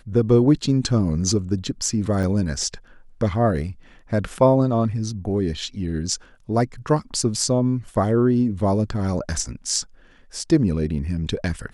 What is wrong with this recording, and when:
2.23 gap 3.8 ms

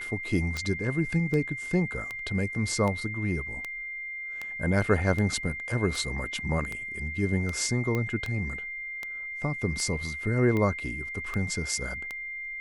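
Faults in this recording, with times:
tick 78 rpm -19 dBFS
tone 2100 Hz -34 dBFS
7.95 pop -17 dBFS

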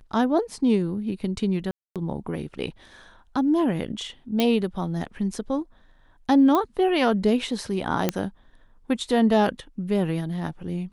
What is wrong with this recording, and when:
1.71–1.96 gap 0.247 s
4.4 pop -9 dBFS
6.55 pop -11 dBFS
8.09 pop -7 dBFS

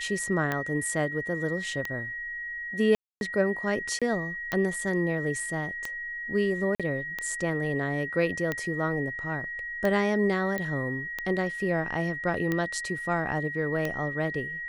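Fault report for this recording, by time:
tick 45 rpm -15 dBFS
tone 1900 Hz -33 dBFS
2.95–3.21 gap 0.261 s
3.99–4.02 gap 26 ms
6.75–6.8 gap 46 ms
10.58 pop -18 dBFS

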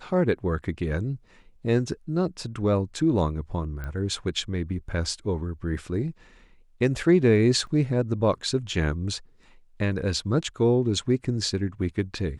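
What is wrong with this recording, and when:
3.84 pop -23 dBFS
7.67 gap 2.2 ms

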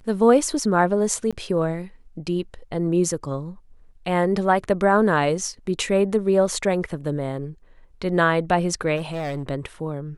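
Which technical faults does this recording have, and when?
1.31–1.33 gap 16 ms
8.96–9.43 clipped -24 dBFS

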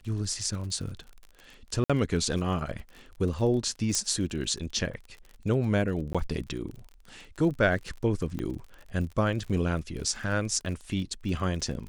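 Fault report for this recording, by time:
crackle 42/s -37 dBFS
1.84–1.9 gap 56 ms
3.95 pop -12 dBFS
6.13–6.15 gap 16 ms
8.39 pop -21 dBFS

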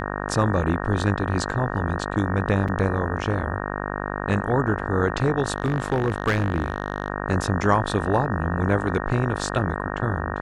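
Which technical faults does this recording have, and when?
buzz 50 Hz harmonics 37 -29 dBFS
2.68–2.69 gap 5.2 ms
5.56–7.08 clipped -15.5 dBFS

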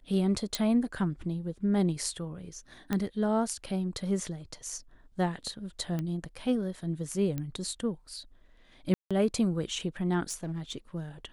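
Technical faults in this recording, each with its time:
0.55 pop
2.93 pop -16 dBFS
5.99 pop -21 dBFS
7.38 pop -21 dBFS
8.94–9.11 gap 0.166 s
10.29–10.76 clipped -30.5 dBFS

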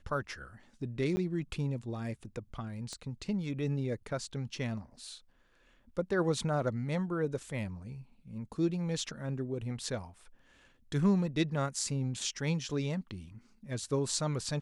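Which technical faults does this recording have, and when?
1.16–1.17 gap 10 ms
2.93 pop -29 dBFS

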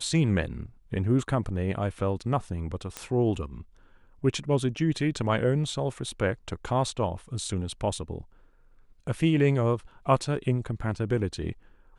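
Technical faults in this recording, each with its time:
2.97 pop -17 dBFS

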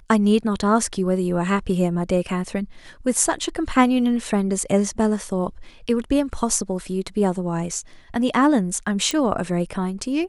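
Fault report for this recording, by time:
9.11 pop

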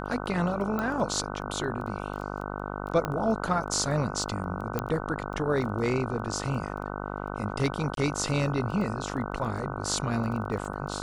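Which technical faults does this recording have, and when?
buzz 50 Hz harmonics 30 -35 dBFS
crackle 10/s -35 dBFS
0.79 pop -18 dBFS
3.05 pop -15 dBFS
4.79 pop -14 dBFS
7.95–7.97 gap 22 ms

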